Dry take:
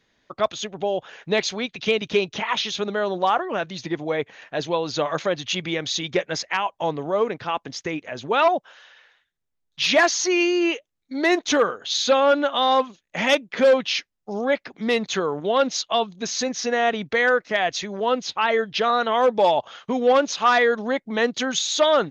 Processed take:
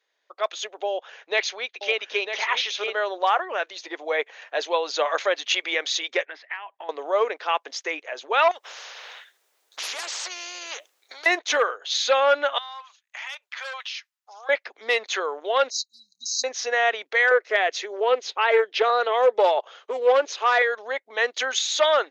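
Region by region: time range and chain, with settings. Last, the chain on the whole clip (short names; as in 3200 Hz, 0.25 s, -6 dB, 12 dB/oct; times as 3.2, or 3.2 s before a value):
0.86–2.96 Chebyshev low-pass 6500 Hz, order 4 + echo 0.95 s -7.5 dB
6.25–6.89 compressor 8:1, threshold -32 dBFS + speaker cabinet 110–3500 Hz, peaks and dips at 290 Hz +7 dB, 520 Hz -9 dB, 1800 Hz +7 dB
8.51–11.26 compressor 2.5:1, threshold -37 dBFS + spectral compressor 4:1
12.58–14.49 HPF 980 Hz 24 dB/oct + compressor, threshold -34 dBFS
15.7–16.44 brick-wall FIR band-stop 290–3800 Hz + bell 270 Hz -10.5 dB 1.2 oct
17.31–20.62 bell 400 Hz +10.5 dB 0.9 oct + Doppler distortion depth 0.13 ms
whole clip: inverse Chebyshev high-pass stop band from 170 Hz, stop band 50 dB; dynamic EQ 2000 Hz, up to +6 dB, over -35 dBFS, Q 1.3; AGC; gain -8 dB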